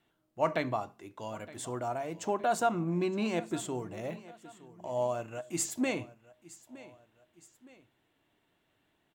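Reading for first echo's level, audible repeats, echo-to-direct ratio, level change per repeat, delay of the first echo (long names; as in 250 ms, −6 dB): −19.0 dB, 2, −18.0 dB, −7.0 dB, 916 ms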